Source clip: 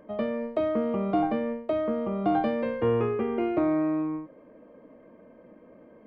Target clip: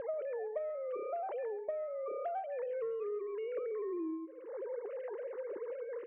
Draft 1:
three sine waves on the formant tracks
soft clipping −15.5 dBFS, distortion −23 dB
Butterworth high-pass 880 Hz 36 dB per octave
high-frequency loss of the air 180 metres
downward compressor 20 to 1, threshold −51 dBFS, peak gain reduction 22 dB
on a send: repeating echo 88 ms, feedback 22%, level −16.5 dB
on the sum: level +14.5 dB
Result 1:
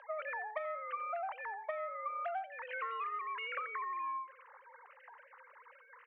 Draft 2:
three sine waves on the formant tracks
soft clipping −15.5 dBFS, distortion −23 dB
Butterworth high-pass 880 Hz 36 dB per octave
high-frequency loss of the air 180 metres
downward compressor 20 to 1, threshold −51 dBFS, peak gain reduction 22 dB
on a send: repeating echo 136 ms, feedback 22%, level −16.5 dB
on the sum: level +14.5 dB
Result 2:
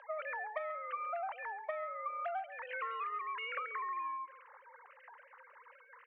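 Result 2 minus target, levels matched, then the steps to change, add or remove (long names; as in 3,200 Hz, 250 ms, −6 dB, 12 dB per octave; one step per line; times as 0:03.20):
1,000 Hz band +7.0 dB
remove: Butterworth high-pass 880 Hz 36 dB per octave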